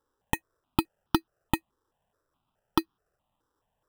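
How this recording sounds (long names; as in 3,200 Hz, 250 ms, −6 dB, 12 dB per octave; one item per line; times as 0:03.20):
aliases and images of a low sample rate 2,200 Hz, jitter 0%
notches that jump at a steady rate 4.7 Hz 670–2,100 Hz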